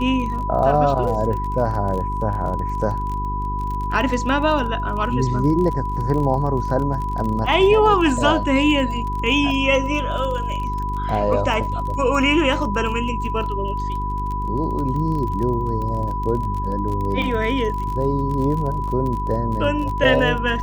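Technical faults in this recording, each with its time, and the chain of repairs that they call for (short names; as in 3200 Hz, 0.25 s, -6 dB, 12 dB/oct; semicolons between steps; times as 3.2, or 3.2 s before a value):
crackle 33/s -27 dBFS
hum 50 Hz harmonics 8 -26 dBFS
tone 990 Hz -25 dBFS
17.22 gap 2.9 ms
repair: de-click; de-hum 50 Hz, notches 8; notch 990 Hz, Q 30; interpolate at 17.22, 2.9 ms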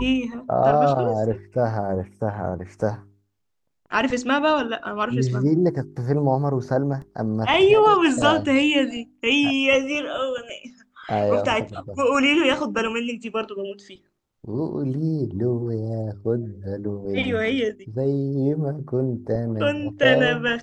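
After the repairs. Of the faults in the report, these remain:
none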